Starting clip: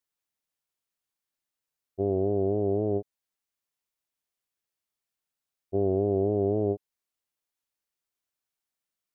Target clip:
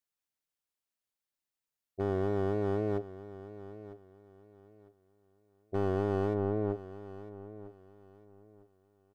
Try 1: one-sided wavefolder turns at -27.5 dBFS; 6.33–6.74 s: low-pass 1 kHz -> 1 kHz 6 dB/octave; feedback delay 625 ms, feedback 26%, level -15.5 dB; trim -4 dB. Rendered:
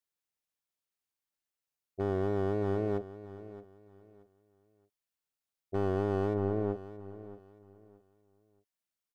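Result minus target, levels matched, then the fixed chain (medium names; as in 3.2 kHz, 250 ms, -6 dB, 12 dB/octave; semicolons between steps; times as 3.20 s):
echo 328 ms early
one-sided wavefolder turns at -27.5 dBFS; 6.33–6.74 s: low-pass 1 kHz -> 1 kHz 6 dB/octave; feedback delay 953 ms, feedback 26%, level -15.5 dB; trim -4 dB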